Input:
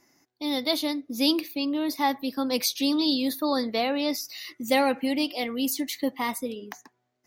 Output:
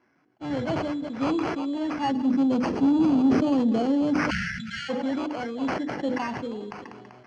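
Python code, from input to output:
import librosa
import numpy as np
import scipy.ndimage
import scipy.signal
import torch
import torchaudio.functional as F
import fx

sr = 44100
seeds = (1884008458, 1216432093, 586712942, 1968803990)

y = fx.spec_quant(x, sr, step_db=15)
y = fx.sample_hold(y, sr, seeds[0], rate_hz=3700.0, jitter_pct=0)
y = fx.graphic_eq(y, sr, hz=(250, 1000, 2000), db=(10, -4, -6), at=(2.11, 4.19))
y = 10.0 ** (-15.0 / 20.0) * np.tanh(y / 10.0 ** (-15.0 / 20.0))
y = scipy.signal.sosfilt(scipy.signal.butter(2, 96.0, 'highpass', fs=sr, output='sos'), y)
y = fx.hum_notches(y, sr, base_hz=50, count=10)
y = fx.echo_feedback(y, sr, ms=194, feedback_pct=30, wet_db=-23.0)
y = fx.spec_erase(y, sr, start_s=4.3, length_s=0.59, low_hz=230.0, high_hz=1300.0)
y = scipy.signal.sosfilt(scipy.signal.butter(4, 6000.0, 'lowpass', fs=sr, output='sos'), y)
y = fx.high_shelf(y, sr, hz=2500.0, db=-10.5)
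y = fx.sustainer(y, sr, db_per_s=26.0)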